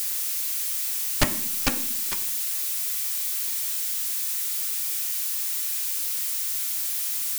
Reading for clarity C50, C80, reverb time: 12.5 dB, 15.5 dB, 0.65 s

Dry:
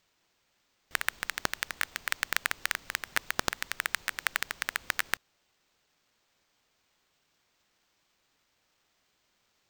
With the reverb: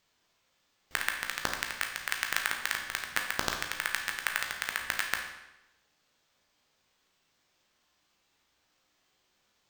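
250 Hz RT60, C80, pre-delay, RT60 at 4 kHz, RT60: 0.95 s, 8.0 dB, 13 ms, 0.85 s, 0.95 s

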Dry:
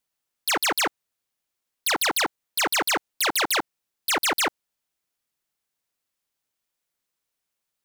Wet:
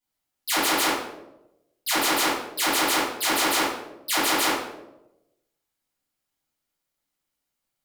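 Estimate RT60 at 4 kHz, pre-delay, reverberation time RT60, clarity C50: 0.55 s, 4 ms, 0.95 s, 1.5 dB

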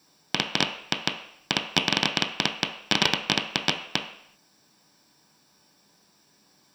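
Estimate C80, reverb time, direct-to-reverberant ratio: 11.5 dB, non-exponential decay, 2.5 dB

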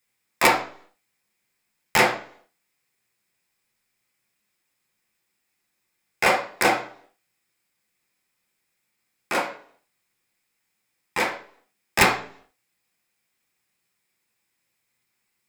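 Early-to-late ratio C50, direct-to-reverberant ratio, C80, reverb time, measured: 8.5 dB, −0.5 dB, 13.0 dB, 0.55 s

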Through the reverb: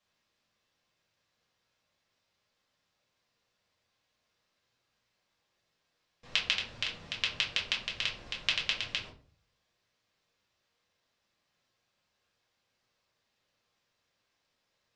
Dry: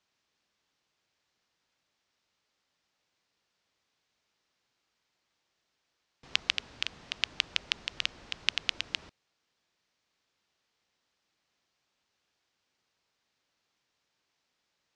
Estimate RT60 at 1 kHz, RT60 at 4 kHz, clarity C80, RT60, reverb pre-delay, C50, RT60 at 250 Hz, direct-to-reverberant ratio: 0.35 s, 0.25 s, 14.5 dB, 0.40 s, 4 ms, 8.5 dB, 0.60 s, −3.5 dB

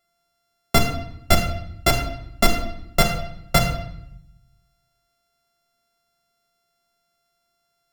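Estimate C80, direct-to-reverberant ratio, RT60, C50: 9.5 dB, 0.5 dB, 0.75 s, 7.0 dB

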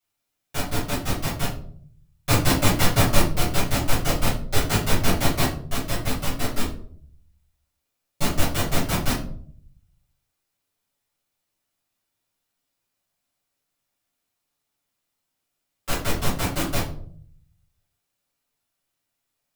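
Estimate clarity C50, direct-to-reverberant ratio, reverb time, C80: 6.5 dB, −11.5 dB, 0.55 s, 12.0 dB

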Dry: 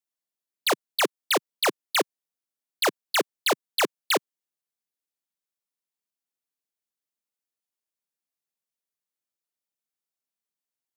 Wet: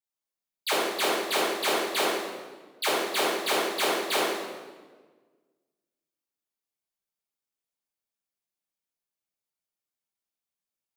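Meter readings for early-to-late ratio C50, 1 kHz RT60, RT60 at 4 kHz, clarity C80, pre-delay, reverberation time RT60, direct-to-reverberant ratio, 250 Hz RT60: −1.5 dB, 1.3 s, 1.1 s, 1.0 dB, 4 ms, 1.4 s, −10.0 dB, 1.8 s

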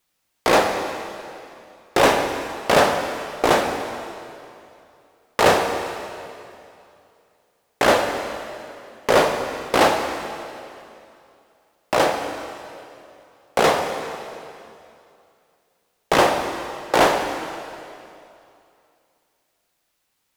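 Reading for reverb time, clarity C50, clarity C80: 2.7 s, 5.5 dB, 6.0 dB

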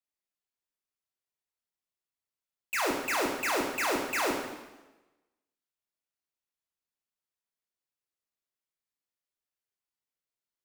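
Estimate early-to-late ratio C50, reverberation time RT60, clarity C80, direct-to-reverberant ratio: 3.0 dB, 1.1 s, 5.5 dB, −0.5 dB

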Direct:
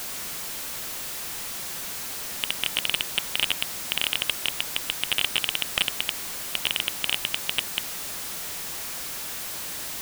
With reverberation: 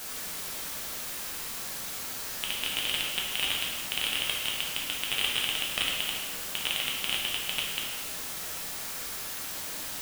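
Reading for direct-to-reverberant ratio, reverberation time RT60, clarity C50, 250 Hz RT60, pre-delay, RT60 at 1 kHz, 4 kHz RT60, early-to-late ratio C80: −3.0 dB, 1.4 s, 1.5 dB, 1.4 s, 4 ms, 1.4 s, 1.1 s, 3.5 dB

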